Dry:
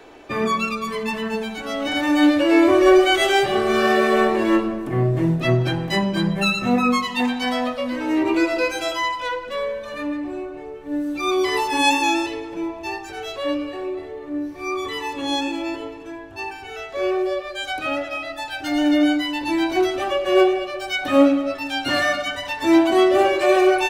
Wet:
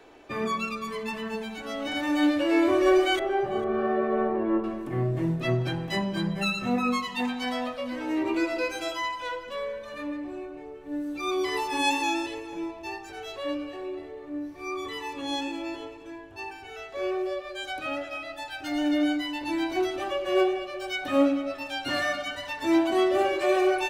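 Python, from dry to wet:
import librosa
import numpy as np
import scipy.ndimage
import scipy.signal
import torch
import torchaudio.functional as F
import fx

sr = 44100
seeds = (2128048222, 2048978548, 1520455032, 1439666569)

p1 = fx.lowpass(x, sr, hz=1100.0, slope=12, at=(3.19, 4.64))
p2 = p1 + fx.echo_single(p1, sr, ms=449, db=-19.5, dry=0)
y = p2 * 10.0 ** (-7.5 / 20.0)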